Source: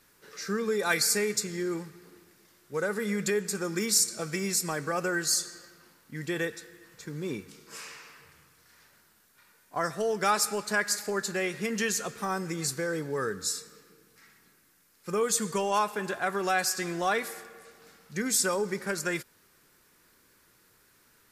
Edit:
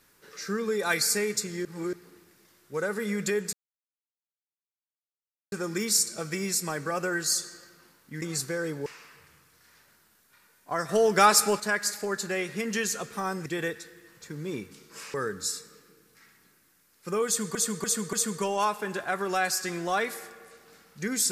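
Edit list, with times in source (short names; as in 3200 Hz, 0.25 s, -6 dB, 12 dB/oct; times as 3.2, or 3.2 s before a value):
1.65–1.93 reverse
3.53 insert silence 1.99 s
6.23–7.91 swap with 12.51–13.15
9.94–10.65 gain +6.5 dB
15.27–15.56 loop, 4 plays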